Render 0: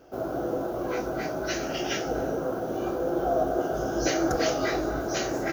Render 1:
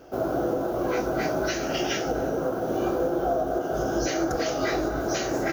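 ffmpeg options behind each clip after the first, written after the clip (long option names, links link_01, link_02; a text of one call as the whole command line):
ffmpeg -i in.wav -af "alimiter=limit=-21dB:level=0:latency=1:release=330,volume=5dB" out.wav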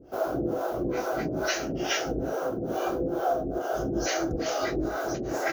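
ffmpeg -i in.wav -filter_complex "[0:a]acrossover=split=440[link_01][link_02];[link_01]aeval=exprs='val(0)*(1-1/2+1/2*cos(2*PI*2.3*n/s))':channel_layout=same[link_03];[link_02]aeval=exprs='val(0)*(1-1/2-1/2*cos(2*PI*2.3*n/s))':channel_layout=same[link_04];[link_03][link_04]amix=inputs=2:normalize=0,volume=2.5dB" out.wav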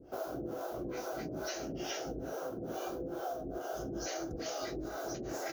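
ffmpeg -i in.wav -filter_complex "[0:a]acrossover=split=1100|3200[link_01][link_02][link_03];[link_01]acompressor=threshold=-34dB:ratio=4[link_04];[link_02]acompressor=threshold=-49dB:ratio=4[link_05];[link_03]acompressor=threshold=-38dB:ratio=4[link_06];[link_04][link_05][link_06]amix=inputs=3:normalize=0,volume=-4dB" out.wav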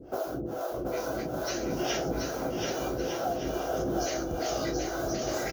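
ffmpeg -i in.wav -filter_complex "[0:a]aphaser=in_gain=1:out_gain=1:delay=2.1:decay=0.25:speed=0.52:type=sinusoidal,asplit=2[link_01][link_02];[link_02]aecho=0:1:730|1204|1513|1713|1844:0.631|0.398|0.251|0.158|0.1[link_03];[link_01][link_03]amix=inputs=2:normalize=0,volume=5.5dB" out.wav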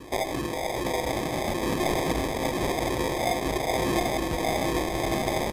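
ffmpeg -i in.wav -af "acrusher=samples=31:mix=1:aa=0.000001,aresample=32000,aresample=44100,volume=4.5dB" out.wav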